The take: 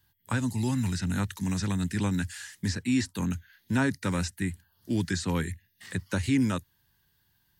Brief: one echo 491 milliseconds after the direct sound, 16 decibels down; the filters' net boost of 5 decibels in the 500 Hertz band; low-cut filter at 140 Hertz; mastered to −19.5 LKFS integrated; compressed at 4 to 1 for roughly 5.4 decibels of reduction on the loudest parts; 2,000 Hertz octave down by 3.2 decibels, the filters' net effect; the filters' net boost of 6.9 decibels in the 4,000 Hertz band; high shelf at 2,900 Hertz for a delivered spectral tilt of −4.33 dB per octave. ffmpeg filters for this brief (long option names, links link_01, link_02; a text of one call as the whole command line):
ffmpeg -i in.wav -af "highpass=140,equalizer=frequency=500:width_type=o:gain=6.5,equalizer=frequency=2000:width_type=o:gain=-8,highshelf=frequency=2900:gain=4.5,equalizer=frequency=4000:width_type=o:gain=6.5,acompressor=threshold=-26dB:ratio=4,aecho=1:1:491:0.158,volume=12.5dB" out.wav